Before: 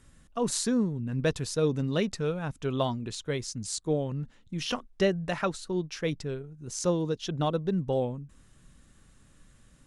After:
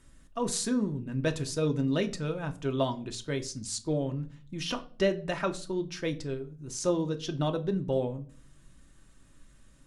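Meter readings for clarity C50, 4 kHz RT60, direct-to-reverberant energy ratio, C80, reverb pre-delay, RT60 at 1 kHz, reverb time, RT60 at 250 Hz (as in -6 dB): 18.0 dB, 0.35 s, 5.5 dB, 22.0 dB, 3 ms, 0.35 s, 0.45 s, 0.65 s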